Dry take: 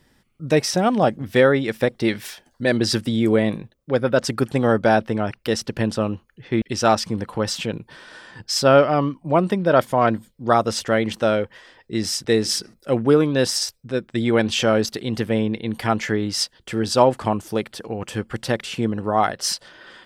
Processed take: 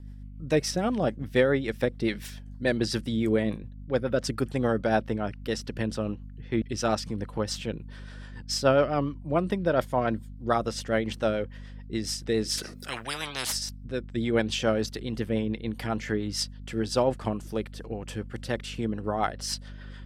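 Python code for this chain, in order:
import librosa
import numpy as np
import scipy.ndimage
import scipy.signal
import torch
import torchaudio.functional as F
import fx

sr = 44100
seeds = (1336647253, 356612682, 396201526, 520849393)

y = fx.add_hum(x, sr, base_hz=50, snr_db=14)
y = fx.rotary(y, sr, hz=7.0)
y = fx.spectral_comp(y, sr, ratio=10.0, at=(12.57, 13.51), fade=0.02)
y = F.gain(torch.from_numpy(y), -5.5).numpy()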